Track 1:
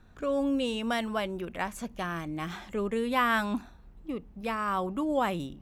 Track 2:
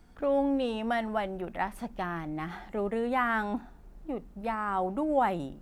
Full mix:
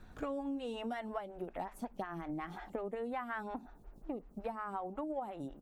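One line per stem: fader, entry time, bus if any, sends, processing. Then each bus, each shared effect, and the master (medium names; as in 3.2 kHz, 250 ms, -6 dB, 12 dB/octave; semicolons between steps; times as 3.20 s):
+1.0 dB, 0.00 s, no send, auto duck -22 dB, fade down 1.60 s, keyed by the second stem
-0.5 dB, 6 ms, polarity flipped, no send, transient shaper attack +5 dB, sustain -1 dB; lamp-driven phase shifter 5.5 Hz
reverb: none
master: compression 6:1, threshold -37 dBFS, peak gain reduction 15.5 dB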